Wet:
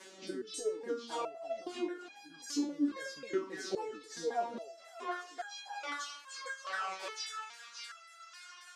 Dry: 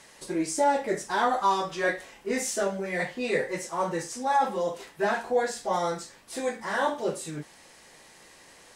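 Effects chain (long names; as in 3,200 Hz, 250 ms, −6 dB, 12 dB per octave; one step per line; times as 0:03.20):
pitch shifter swept by a sawtooth −11 semitones, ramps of 269 ms
rotating-speaker cabinet horn 0.8 Hz
high-pass filter sweep 290 Hz → 1,300 Hz, 0:04.45–0:05.26
on a send: delay with a high-pass on its return 576 ms, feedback 46%, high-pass 1,800 Hz, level −8.5 dB
on the sum: downward compressor 5 to 1, threshold −36 dBFS, peak gain reduction 17 dB
step-sequenced resonator 2.4 Hz 190–820 Hz
level +15.5 dB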